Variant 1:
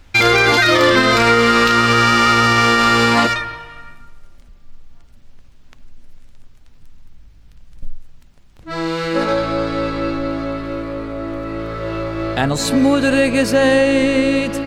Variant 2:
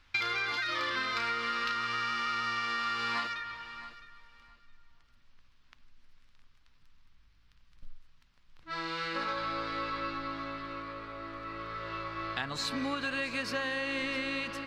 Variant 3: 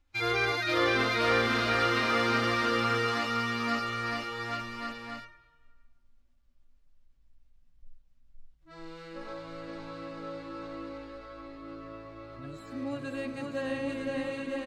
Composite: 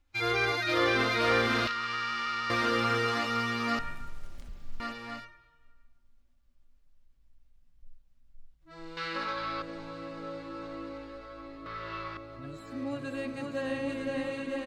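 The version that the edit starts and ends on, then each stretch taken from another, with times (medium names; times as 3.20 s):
3
1.67–2.50 s: from 2
3.79–4.80 s: from 1
8.97–9.62 s: from 2
11.66–12.17 s: from 2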